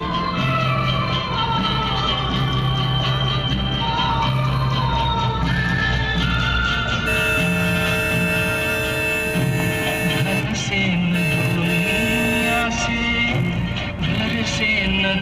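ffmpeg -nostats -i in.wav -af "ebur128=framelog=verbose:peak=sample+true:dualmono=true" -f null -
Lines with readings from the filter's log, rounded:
Integrated loudness:
  I:         -16.3 LUFS
  Threshold: -26.2 LUFS
Loudness range:
  LRA:         1.1 LU
  Threshold: -36.2 LUFS
  LRA low:   -16.7 LUFS
  LRA high:  -15.6 LUFS
Sample peak:
  Peak:       -6.8 dBFS
True peak:
  Peak:       -6.8 dBFS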